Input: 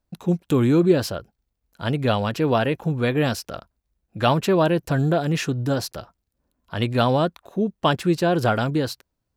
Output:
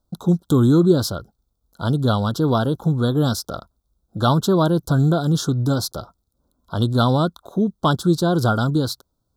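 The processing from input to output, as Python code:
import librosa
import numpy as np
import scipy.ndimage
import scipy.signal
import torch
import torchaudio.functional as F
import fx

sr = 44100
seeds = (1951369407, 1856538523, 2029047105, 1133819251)

y = scipy.signal.sosfilt(scipy.signal.ellip(3, 1.0, 50, [1400.0, 3500.0], 'bandstop', fs=sr, output='sos'), x)
y = fx.dynamic_eq(y, sr, hz=580.0, q=0.9, threshold_db=-34.0, ratio=4.0, max_db=-7)
y = F.gain(torch.from_numpy(y), 5.5).numpy()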